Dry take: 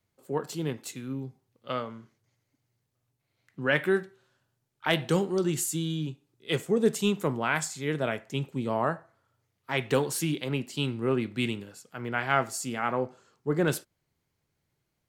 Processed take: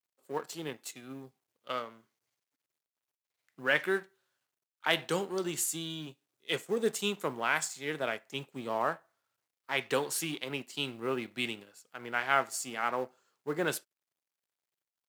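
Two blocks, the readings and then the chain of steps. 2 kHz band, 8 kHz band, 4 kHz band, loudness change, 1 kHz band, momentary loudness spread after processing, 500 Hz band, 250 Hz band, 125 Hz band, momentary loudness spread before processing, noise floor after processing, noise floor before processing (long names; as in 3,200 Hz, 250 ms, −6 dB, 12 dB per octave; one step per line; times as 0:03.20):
−1.0 dB, −1.5 dB, −1.0 dB, −4.0 dB, −2.0 dB, 14 LU, −5.5 dB, −9.0 dB, −13.5 dB, 12 LU, below −85 dBFS, −80 dBFS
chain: mu-law and A-law mismatch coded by A
high-pass filter 620 Hz 6 dB per octave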